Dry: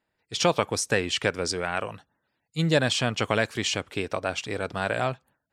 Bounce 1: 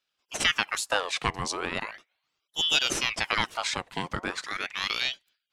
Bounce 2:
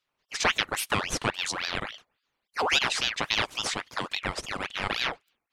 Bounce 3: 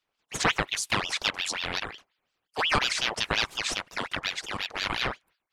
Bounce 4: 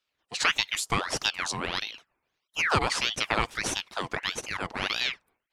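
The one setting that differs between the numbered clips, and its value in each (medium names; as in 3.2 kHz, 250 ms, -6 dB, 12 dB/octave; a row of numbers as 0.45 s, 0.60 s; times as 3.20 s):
ring modulator with a swept carrier, at: 0.38 Hz, 3.6 Hz, 5.6 Hz, 1.6 Hz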